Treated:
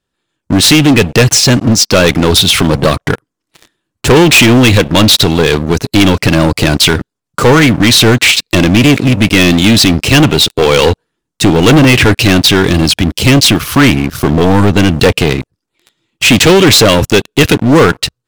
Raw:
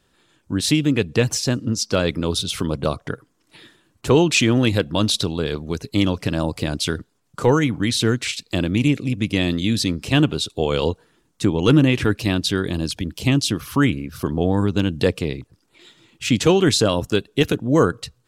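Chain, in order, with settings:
dynamic equaliser 2,400 Hz, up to +7 dB, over −39 dBFS, Q 1.1
leveller curve on the samples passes 5
level −1 dB

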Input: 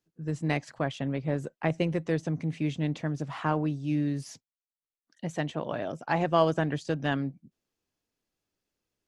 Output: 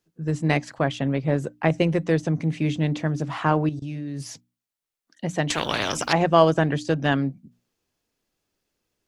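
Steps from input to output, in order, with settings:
mains-hum notches 60/120/180/240/300 Hz
0:03.69–0:04.21: output level in coarse steps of 19 dB
0:05.50–0:06.13: every bin compressed towards the loudest bin 4 to 1
level +7 dB

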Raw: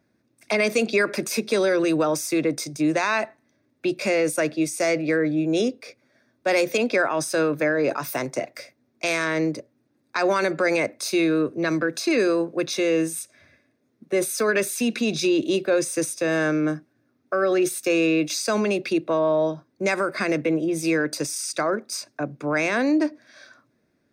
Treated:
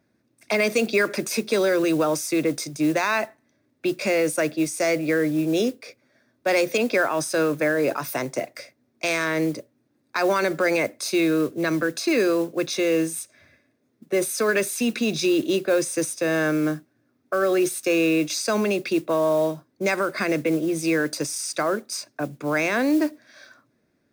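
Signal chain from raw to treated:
noise that follows the level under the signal 24 dB

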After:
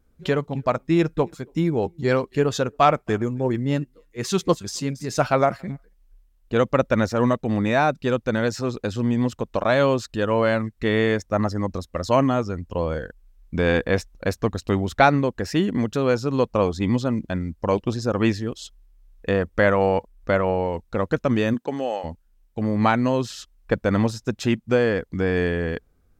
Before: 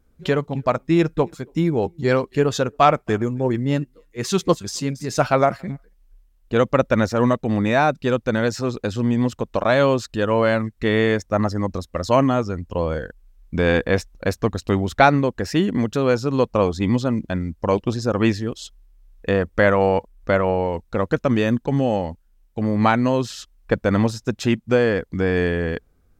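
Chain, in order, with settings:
0:21.53–0:22.03: high-pass filter 180 Hz → 740 Hz 12 dB per octave
level −2 dB

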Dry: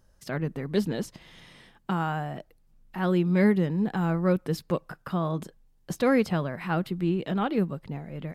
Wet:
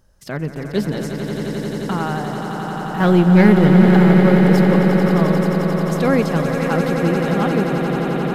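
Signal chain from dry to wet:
0:03.00–0:03.97: leveller curve on the samples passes 2
on a send: echo that builds up and dies away 88 ms, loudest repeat 8, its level −9 dB
on the sum: level +5 dB

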